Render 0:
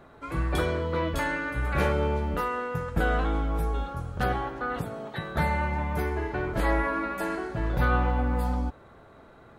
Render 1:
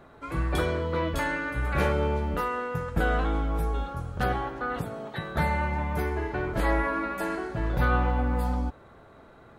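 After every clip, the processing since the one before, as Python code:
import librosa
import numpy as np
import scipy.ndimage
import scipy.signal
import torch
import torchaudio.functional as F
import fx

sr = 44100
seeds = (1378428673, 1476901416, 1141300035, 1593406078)

y = x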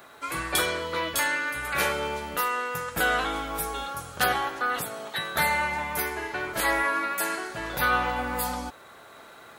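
y = fx.tilt_eq(x, sr, slope=4.5)
y = fx.rider(y, sr, range_db=4, speed_s=2.0)
y = F.gain(torch.from_numpy(y), 2.0).numpy()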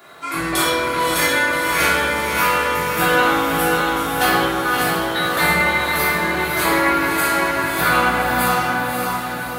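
y = scipy.signal.sosfilt(scipy.signal.butter(2, 90.0, 'highpass', fs=sr, output='sos'), x)
y = fx.echo_diffused(y, sr, ms=585, feedback_pct=52, wet_db=-3)
y = fx.room_shoebox(y, sr, seeds[0], volume_m3=510.0, walls='mixed', distance_m=3.2)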